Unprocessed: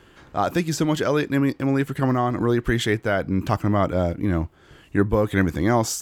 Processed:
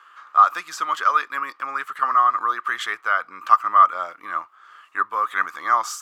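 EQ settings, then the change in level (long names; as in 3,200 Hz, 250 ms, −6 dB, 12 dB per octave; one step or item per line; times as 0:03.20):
high-pass with resonance 1,200 Hz, resonance Q 13
high-shelf EQ 7,700 Hz −5 dB
−3.0 dB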